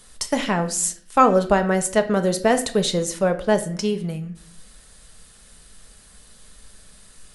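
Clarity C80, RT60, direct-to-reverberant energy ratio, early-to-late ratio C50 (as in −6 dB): 17.0 dB, 0.55 s, 7.0 dB, 13.0 dB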